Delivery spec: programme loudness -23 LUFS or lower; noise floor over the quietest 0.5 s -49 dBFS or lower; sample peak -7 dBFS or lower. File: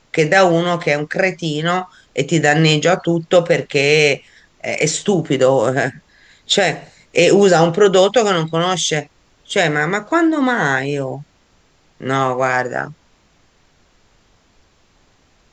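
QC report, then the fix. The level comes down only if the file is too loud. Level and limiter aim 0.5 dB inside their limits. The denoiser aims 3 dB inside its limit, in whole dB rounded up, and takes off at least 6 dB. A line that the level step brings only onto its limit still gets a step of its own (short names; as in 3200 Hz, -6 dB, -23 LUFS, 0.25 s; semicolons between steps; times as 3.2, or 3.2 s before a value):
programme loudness -16.0 LUFS: fail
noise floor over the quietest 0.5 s -56 dBFS: OK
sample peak -1.5 dBFS: fail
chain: gain -7.5 dB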